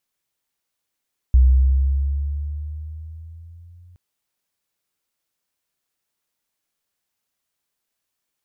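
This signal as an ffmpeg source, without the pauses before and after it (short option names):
-f lavfi -i "aevalsrc='pow(10,(-8-36.5*t/2.62)/20)*sin(2*PI*63.2*2.62/(6*log(2)/12)*(exp(6*log(2)/12*t/2.62)-1))':d=2.62:s=44100"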